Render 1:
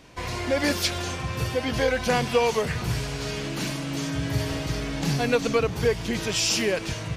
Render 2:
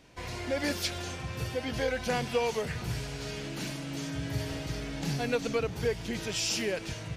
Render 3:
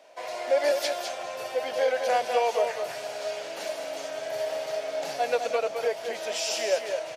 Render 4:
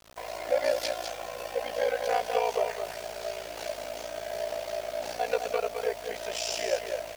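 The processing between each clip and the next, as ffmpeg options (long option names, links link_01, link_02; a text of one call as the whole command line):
ffmpeg -i in.wav -af "equalizer=frequency=1100:width_type=o:width=0.21:gain=-5.5,volume=-7dB" out.wav
ffmpeg -i in.wav -af "highpass=frequency=620:width_type=q:width=6.7,aecho=1:1:207:0.473" out.wav
ffmpeg -i in.wav -af "aeval=exprs='val(0)*sin(2*PI*29*n/s)':channel_layout=same,aeval=exprs='val(0)+0.00158*(sin(2*PI*50*n/s)+sin(2*PI*2*50*n/s)/2+sin(2*PI*3*50*n/s)/3+sin(2*PI*4*50*n/s)/4+sin(2*PI*5*50*n/s)/5)':channel_layout=same,acrusher=bits=7:mix=0:aa=0.000001" out.wav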